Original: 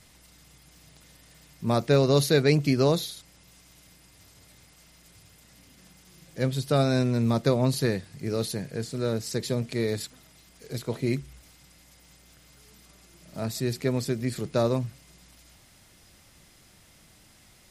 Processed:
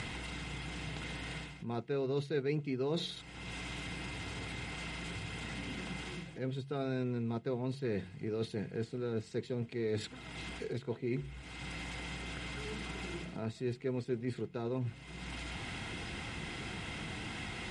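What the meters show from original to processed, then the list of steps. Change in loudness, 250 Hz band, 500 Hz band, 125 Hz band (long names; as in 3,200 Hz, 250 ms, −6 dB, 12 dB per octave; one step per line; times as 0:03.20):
−13.0 dB, −10.0 dB, −10.5 dB, −11.0 dB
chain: high shelf with overshoot 4,000 Hz −10 dB, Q 1.5
in parallel at −9 dB: dead-zone distortion −37 dBFS
on the sum: upward compression, threshold −25 dBFS
Butterworth low-pass 9,400 Hz 48 dB per octave
reversed playback
downward compressor 5 to 1, threshold −36 dBFS, peak gain reduction 20 dB
reversed playback
notch comb filter 590 Hz
hum removal 45.59 Hz, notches 4
dynamic equaliser 400 Hz, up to +5 dB, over −52 dBFS, Q 2.7
level +1 dB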